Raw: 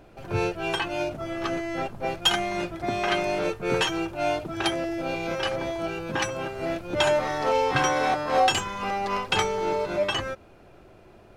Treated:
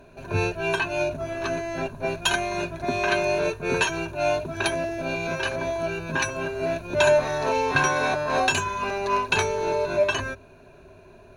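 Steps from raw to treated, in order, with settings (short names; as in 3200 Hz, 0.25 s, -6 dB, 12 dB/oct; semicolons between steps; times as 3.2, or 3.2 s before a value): ripple EQ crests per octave 1.5, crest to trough 12 dB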